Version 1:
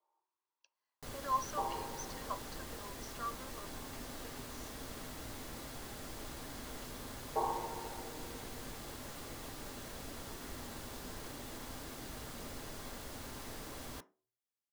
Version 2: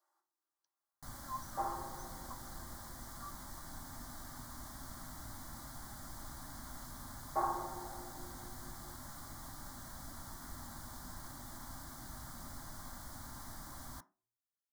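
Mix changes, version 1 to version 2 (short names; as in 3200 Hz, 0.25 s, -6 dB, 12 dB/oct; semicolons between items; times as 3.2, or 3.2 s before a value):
speech -10.0 dB; second sound: remove ladder low-pass 1000 Hz, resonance 80%; master: add fixed phaser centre 1100 Hz, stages 4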